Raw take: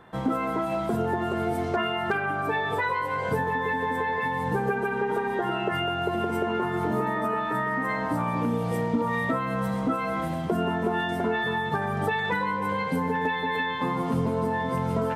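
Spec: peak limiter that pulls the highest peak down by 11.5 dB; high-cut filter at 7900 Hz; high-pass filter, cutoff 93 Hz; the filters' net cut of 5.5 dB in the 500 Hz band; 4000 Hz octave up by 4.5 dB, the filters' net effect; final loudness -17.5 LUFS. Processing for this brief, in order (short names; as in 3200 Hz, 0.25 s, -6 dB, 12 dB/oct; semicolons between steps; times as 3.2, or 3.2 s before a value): HPF 93 Hz; LPF 7900 Hz; bell 500 Hz -7.5 dB; bell 4000 Hz +6.5 dB; gain +17.5 dB; limiter -10 dBFS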